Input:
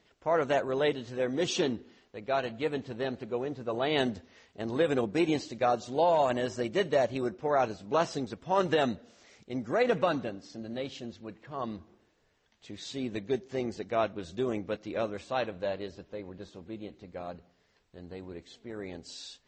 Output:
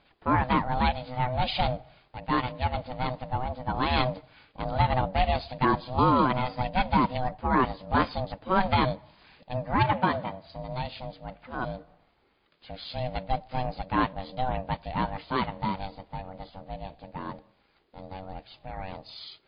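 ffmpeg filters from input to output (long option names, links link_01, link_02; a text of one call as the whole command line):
ffmpeg -i in.wav -filter_complex "[0:a]aeval=exprs='val(0)*sin(2*PI*380*n/s)':channel_layout=same,asettb=1/sr,asplit=3[link_01][link_02][link_03];[link_01]atrim=end=9.834[link_04];[link_02]atrim=start=9.83:end=10.47,asetpts=PTS-STARTPTS,afade=type=in:duration=0.004:curve=qsin,afade=type=out:start_time=0.636:duration=0.004:curve=qsin,highpass=130,lowpass=3700[link_05];[link_03]atrim=start=10.466[link_06];[link_04][link_05]acrossfade=duration=0.004:curve1=hsin:curve2=qsin[link_07];[link_07][link_06]acrossfade=duration=0.004:curve1=qsin:curve2=hsin,volume=6.5dB" -ar 11025 -c:a libmp3lame -b:a 48k out.mp3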